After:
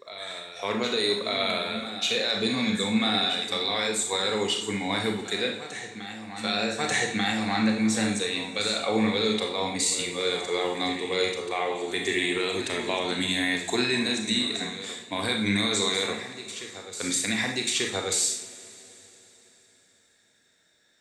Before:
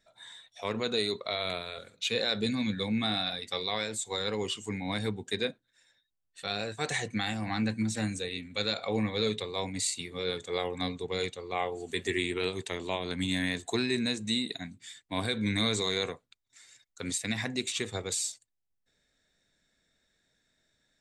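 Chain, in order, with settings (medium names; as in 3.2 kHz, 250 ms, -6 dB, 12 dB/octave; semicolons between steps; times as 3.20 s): high-pass 280 Hz 6 dB/octave; peak limiter -22 dBFS, peak gain reduction 7 dB; reverse echo 1189 ms -12 dB; reverberation, pre-delay 29 ms, DRR 2 dB; trim +6.5 dB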